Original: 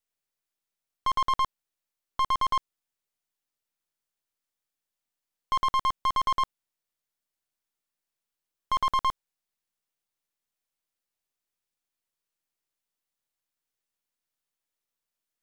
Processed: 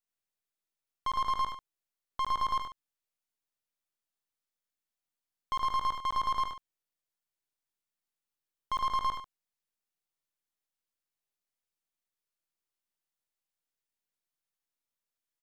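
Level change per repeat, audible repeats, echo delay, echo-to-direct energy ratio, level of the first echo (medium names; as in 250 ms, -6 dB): no regular repeats, 2, 73 ms, -4.5 dB, -6.0 dB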